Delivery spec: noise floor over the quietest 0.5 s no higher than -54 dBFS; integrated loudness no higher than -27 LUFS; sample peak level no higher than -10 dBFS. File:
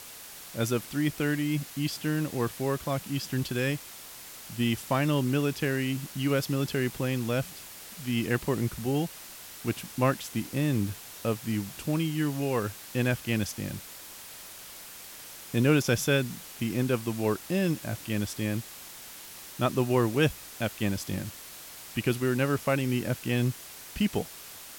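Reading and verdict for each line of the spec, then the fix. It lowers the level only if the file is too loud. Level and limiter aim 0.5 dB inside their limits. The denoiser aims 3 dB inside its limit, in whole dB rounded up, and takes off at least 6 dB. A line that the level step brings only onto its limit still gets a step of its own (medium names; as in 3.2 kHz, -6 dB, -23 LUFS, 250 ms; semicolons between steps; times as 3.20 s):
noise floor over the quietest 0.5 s -45 dBFS: fail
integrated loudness -29.5 LUFS: pass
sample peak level -10.5 dBFS: pass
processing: noise reduction 12 dB, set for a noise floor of -45 dBFS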